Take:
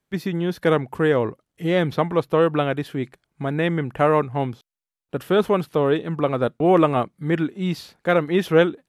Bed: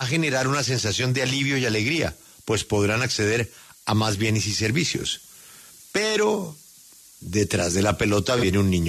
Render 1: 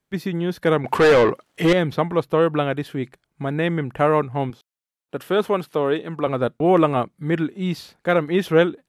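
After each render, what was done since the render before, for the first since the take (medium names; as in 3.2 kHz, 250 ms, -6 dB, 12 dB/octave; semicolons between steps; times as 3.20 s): 0.84–1.73 s: overdrive pedal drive 26 dB, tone 3.8 kHz, clips at -6.5 dBFS; 4.50–6.27 s: high-pass 250 Hz 6 dB/octave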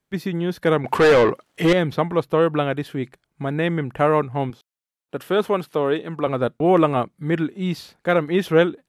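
no audible change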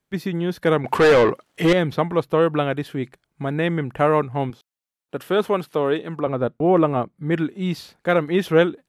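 6.20–7.31 s: treble shelf 2 kHz -10.5 dB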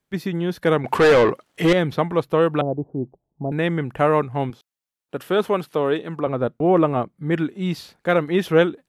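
2.61–3.52 s: steep low-pass 880 Hz 48 dB/octave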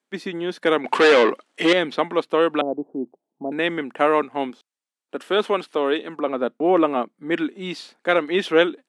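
elliptic band-pass 240–9300 Hz, stop band 40 dB; dynamic bell 3.2 kHz, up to +6 dB, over -40 dBFS, Q 0.93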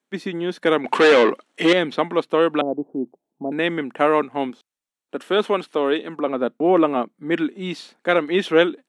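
bass shelf 160 Hz +9 dB; band-stop 4.8 kHz, Q 16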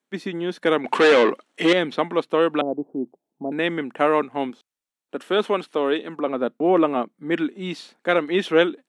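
trim -1.5 dB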